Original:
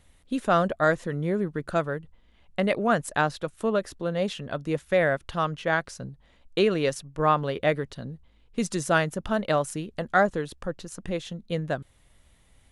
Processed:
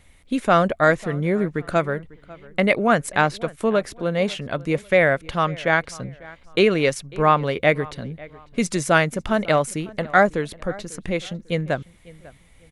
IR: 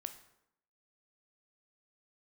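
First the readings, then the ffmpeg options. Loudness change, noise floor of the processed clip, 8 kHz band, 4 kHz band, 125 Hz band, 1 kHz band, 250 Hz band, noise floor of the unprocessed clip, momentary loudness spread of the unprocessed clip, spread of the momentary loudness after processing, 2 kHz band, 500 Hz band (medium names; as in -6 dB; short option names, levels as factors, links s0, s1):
+5.5 dB, -52 dBFS, +5.0 dB, +5.5 dB, +5.0 dB, +5.0 dB, +5.0 dB, -60 dBFS, 12 LU, 12 LU, +7.0 dB, +5.0 dB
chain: -filter_complex "[0:a]equalizer=f=2200:t=o:w=0.25:g=9,asplit=2[s0][s1];[s1]adelay=547,lowpass=f=3200:p=1,volume=0.0891,asplit=2[s2][s3];[s3]adelay=547,lowpass=f=3200:p=1,volume=0.32[s4];[s0][s2][s4]amix=inputs=3:normalize=0,volume=1.78"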